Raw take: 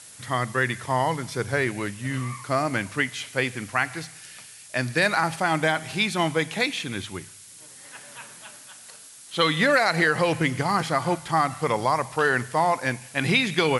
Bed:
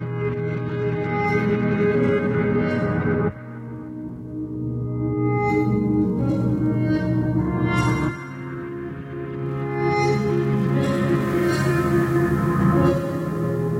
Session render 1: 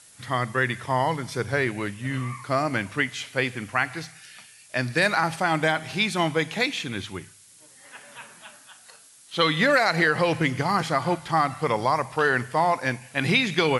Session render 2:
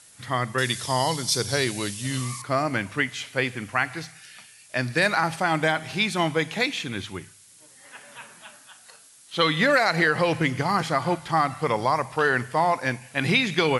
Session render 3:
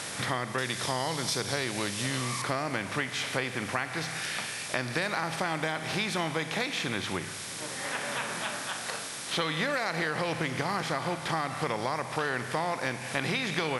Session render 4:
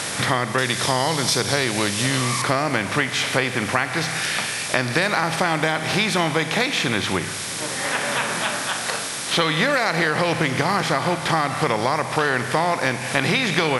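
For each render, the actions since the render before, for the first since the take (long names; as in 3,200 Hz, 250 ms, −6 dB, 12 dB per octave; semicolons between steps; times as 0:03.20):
noise reduction from a noise print 6 dB
0:00.58–0:02.42: high shelf with overshoot 3,000 Hz +13.5 dB, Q 1.5
compressor on every frequency bin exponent 0.6; downward compressor 4 to 1, threshold −29 dBFS, peak gain reduction 14 dB
level +10 dB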